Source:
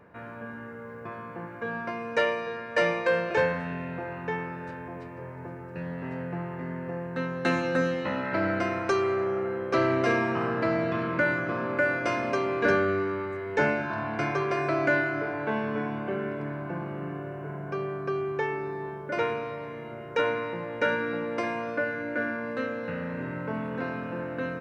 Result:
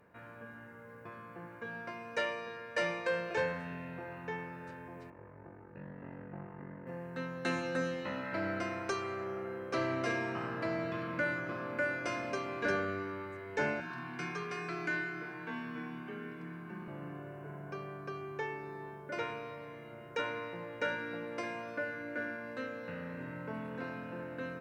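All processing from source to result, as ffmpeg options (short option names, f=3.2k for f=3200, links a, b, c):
-filter_complex "[0:a]asettb=1/sr,asplit=3[a][b][c];[a]atrim=end=5.104[d];[b]atrim=start=5.1:end=6.87,asetpts=PTS-STARTPTS,afade=t=in:d=0.004:c=qsin,afade=t=out:st=1.766:d=0.004:c=qsin,lowpass=1.8k,aeval=exprs='val(0)*sin(2*PI*24*n/s)':c=same[e];[c]atrim=start=6.866[f];[d][e]acrossfade=d=0.004:c1=hsin:c2=qsin[g];[g][f]acrossfade=d=0.004:c1=qsin:c2=hsin,asettb=1/sr,asplit=3[h][i][j];[h]atrim=end=13.804[k];[i]atrim=start=13.8:end=16.88,asetpts=PTS-STARTPTS,afade=t=in:d=0.004:c=qsin,afade=t=out:st=3.076:d=0.004:c=qsin,equalizer=f=580:w=1.8:g=-14.5,afreqshift=26[l];[j]atrim=start=16.876[m];[k][l]acrossfade=d=0.004:c1=hsin:c2=qsin[n];[n][m]acrossfade=d=0.004:c1=qsin:c2=hsin,aemphasis=mode=production:type=cd,bandreject=f=77.47:t=h:w=4,bandreject=f=154.94:t=h:w=4,bandreject=f=232.41:t=h:w=4,bandreject=f=309.88:t=h:w=4,bandreject=f=387.35:t=h:w=4,bandreject=f=464.82:t=h:w=4,bandreject=f=542.29:t=h:w=4,bandreject=f=619.76:t=h:w=4,bandreject=f=697.23:t=h:w=4,bandreject=f=774.7:t=h:w=4,bandreject=f=852.17:t=h:w=4,bandreject=f=929.64:t=h:w=4,bandreject=f=1.00711k:t=h:w=4,bandreject=f=1.08458k:t=h:w=4,bandreject=f=1.16205k:t=h:w=4,bandreject=f=1.23952k:t=h:w=4,bandreject=f=1.31699k:t=h:w=4,volume=-8.5dB"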